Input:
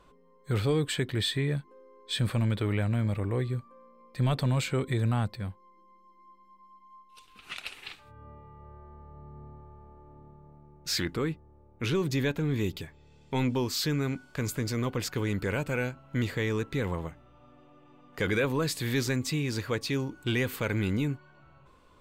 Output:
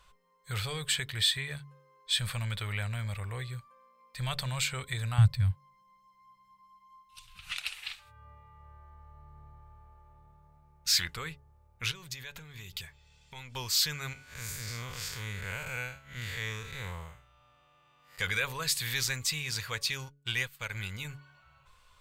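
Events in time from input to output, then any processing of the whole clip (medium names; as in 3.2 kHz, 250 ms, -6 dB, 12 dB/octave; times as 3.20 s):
5.18–7.52 s: resonant low shelf 200 Hz +11.5 dB, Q 3
11.91–13.55 s: compression 12:1, threshold -34 dBFS
14.13–18.19 s: spectral blur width 145 ms
20.09–21.05 s: upward expansion 2.5:1, over -50 dBFS
whole clip: amplifier tone stack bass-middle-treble 10-0-10; de-hum 141.7 Hz, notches 4; trim +6 dB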